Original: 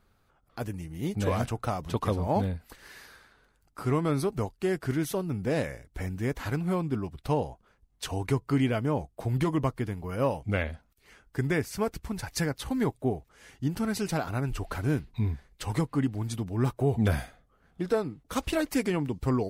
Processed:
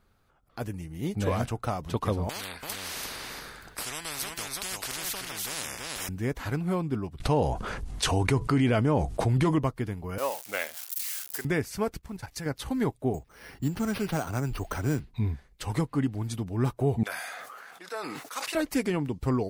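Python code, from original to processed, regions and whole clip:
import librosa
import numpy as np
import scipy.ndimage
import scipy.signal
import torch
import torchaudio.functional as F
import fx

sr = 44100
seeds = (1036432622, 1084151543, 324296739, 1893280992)

y = fx.chain(x, sr, fx.echo_single(ms=335, db=-7.5),
    fx.spectral_comp(ratio=10.0), at=(2.29, 6.09))
y = fx.chain(y, sr, fx.lowpass(hz=11000.0, slope=24),
    fx.env_flatten(amount_pct=70), at=(7.2, 9.59))
y = fx.chain(y, sr, fx.crossing_spikes(level_db=-29.0),
    fx.highpass(hz=570.0, slope=12),
    fx.high_shelf(hz=4300.0, db=5.0), at=(10.18, 11.45))
y = fx.chain(y, sr, fx.block_float(bits=7),
    fx.level_steps(step_db=12), at=(11.97, 12.46))
y = fx.chain(y, sr, fx.env_lowpass(base_hz=3000.0, full_db=-22.5),
    fx.resample_bad(factor=6, down='none', up='hold'),
    fx.band_squash(depth_pct=40), at=(13.14, 15.0))
y = fx.chain(y, sr, fx.highpass(hz=1000.0, slope=12),
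    fx.peak_eq(hz=3200.0, db=-5.5, octaves=0.32),
    fx.sustainer(db_per_s=23.0), at=(17.03, 18.55))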